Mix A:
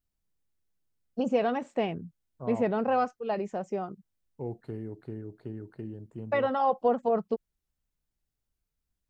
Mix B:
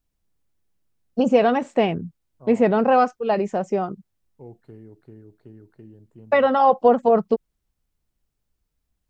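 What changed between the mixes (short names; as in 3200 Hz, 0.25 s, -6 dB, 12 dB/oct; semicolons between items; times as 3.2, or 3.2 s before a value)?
first voice +9.5 dB; second voice -6.0 dB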